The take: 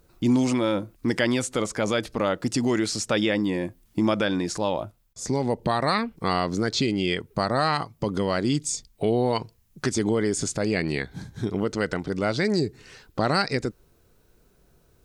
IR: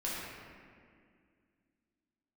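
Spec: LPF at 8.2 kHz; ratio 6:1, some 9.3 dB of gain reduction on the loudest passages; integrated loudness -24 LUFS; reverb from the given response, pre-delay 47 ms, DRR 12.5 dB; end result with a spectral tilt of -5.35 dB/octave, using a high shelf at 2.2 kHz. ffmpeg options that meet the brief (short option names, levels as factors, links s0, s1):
-filter_complex "[0:a]lowpass=8200,highshelf=f=2200:g=-4.5,acompressor=threshold=0.0398:ratio=6,asplit=2[s0][s1];[1:a]atrim=start_sample=2205,adelay=47[s2];[s1][s2]afir=irnorm=-1:irlink=0,volume=0.133[s3];[s0][s3]amix=inputs=2:normalize=0,volume=2.99"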